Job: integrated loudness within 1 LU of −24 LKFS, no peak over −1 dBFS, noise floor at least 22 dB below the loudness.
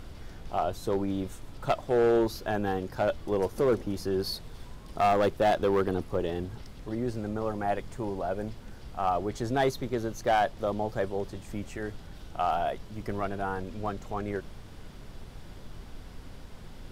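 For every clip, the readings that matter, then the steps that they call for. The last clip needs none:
share of clipped samples 0.6%; peaks flattened at −18.5 dBFS; background noise floor −46 dBFS; target noise floor −52 dBFS; integrated loudness −30.0 LKFS; sample peak −18.5 dBFS; target loudness −24.0 LKFS
→ clipped peaks rebuilt −18.5 dBFS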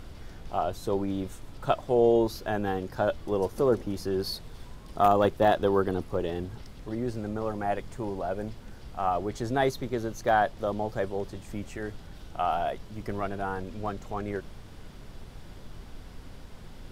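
share of clipped samples 0.0%; background noise floor −46 dBFS; target noise floor −51 dBFS
→ noise reduction from a noise print 6 dB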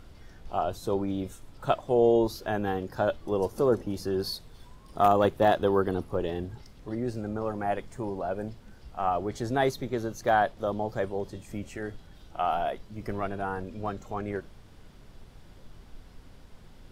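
background noise floor −52 dBFS; integrated loudness −29.0 LKFS; sample peak −9.5 dBFS; target loudness −24.0 LKFS
→ level +5 dB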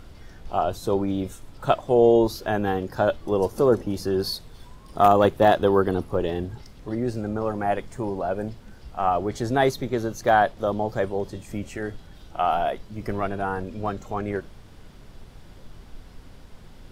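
integrated loudness −24.0 LKFS; sample peak −4.5 dBFS; background noise floor −47 dBFS

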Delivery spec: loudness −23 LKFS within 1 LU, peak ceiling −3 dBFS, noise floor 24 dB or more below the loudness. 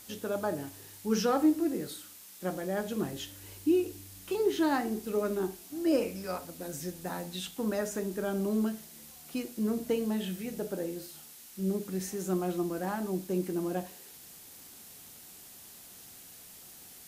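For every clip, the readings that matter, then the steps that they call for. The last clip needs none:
background noise floor −51 dBFS; target noise floor −57 dBFS; integrated loudness −32.5 LKFS; sample peak −16.0 dBFS; target loudness −23.0 LKFS
→ noise reduction from a noise print 6 dB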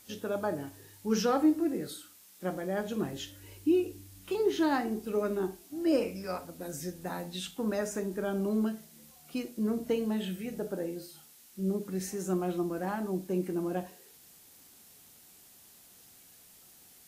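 background noise floor −57 dBFS; integrated loudness −32.5 LKFS; sample peak −16.0 dBFS; target loudness −23.0 LKFS
→ level +9.5 dB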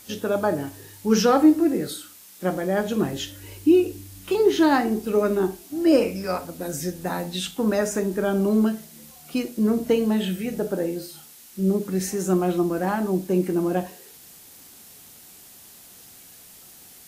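integrated loudness −23.0 LKFS; sample peak −6.5 dBFS; background noise floor −48 dBFS

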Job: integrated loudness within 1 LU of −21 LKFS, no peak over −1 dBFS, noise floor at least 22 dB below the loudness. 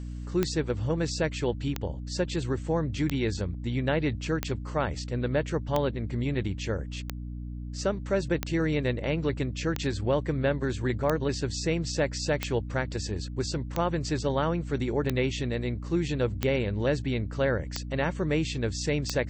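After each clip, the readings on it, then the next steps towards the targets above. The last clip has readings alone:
number of clicks 15; mains hum 60 Hz; hum harmonics up to 300 Hz; level of the hum −34 dBFS; integrated loudness −29.5 LKFS; sample peak −8.5 dBFS; target loudness −21.0 LKFS
→ click removal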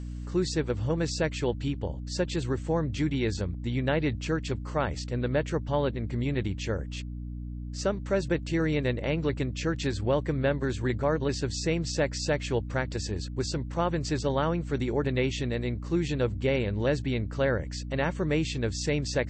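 number of clicks 0; mains hum 60 Hz; hum harmonics up to 300 Hz; level of the hum −34 dBFS
→ mains-hum notches 60/120/180/240/300 Hz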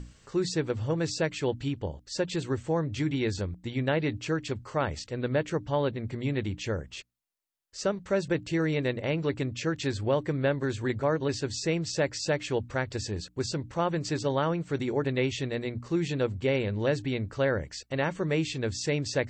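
mains hum none found; integrated loudness −30.0 LKFS; sample peak −14.5 dBFS; target loudness −21.0 LKFS
→ level +9 dB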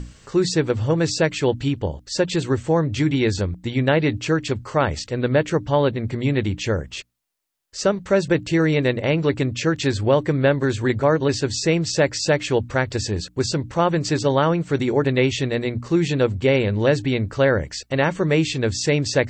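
integrated loudness −21.0 LKFS; sample peak −5.5 dBFS; background noise floor −50 dBFS

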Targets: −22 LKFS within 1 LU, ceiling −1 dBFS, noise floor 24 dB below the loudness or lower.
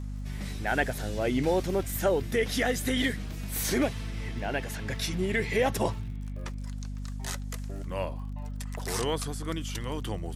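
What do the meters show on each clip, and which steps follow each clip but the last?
crackle rate 45 per second; mains hum 50 Hz; hum harmonics up to 250 Hz; level of the hum −33 dBFS; integrated loudness −31.0 LKFS; sample peak −11.5 dBFS; target loudness −22.0 LKFS
→ click removal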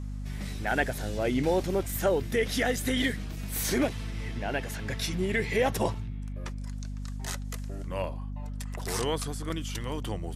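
crackle rate 0.097 per second; mains hum 50 Hz; hum harmonics up to 250 Hz; level of the hum −33 dBFS
→ hum removal 50 Hz, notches 5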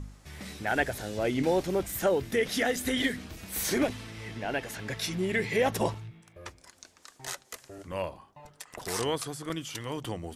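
mains hum none found; integrated loudness −31.0 LKFS; sample peak −12.0 dBFS; target loudness −22.0 LKFS
→ level +9 dB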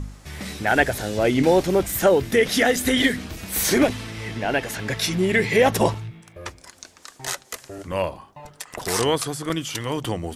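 integrated loudness −22.0 LKFS; sample peak −3.0 dBFS; background noise floor −52 dBFS

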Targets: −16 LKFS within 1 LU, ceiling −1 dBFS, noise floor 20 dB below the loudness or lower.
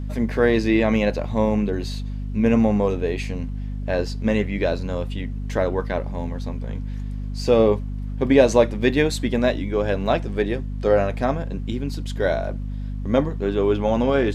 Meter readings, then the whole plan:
mains hum 50 Hz; hum harmonics up to 250 Hz; level of the hum −26 dBFS; integrated loudness −22.5 LKFS; sample peak −2.5 dBFS; target loudness −16.0 LKFS
→ mains-hum notches 50/100/150/200/250 Hz
level +6.5 dB
brickwall limiter −1 dBFS

